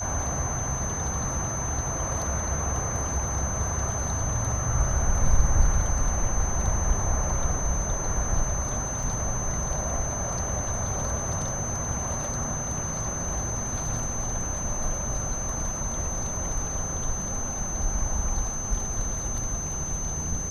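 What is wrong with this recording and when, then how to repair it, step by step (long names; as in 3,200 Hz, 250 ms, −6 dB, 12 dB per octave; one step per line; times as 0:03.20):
whistle 6,200 Hz −31 dBFS
0:09.03: drop-out 3.6 ms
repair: notch filter 6,200 Hz, Q 30
repair the gap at 0:09.03, 3.6 ms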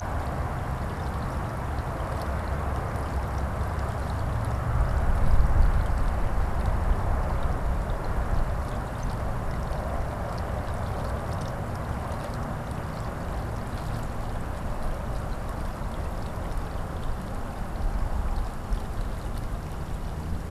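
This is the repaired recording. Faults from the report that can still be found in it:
none of them is left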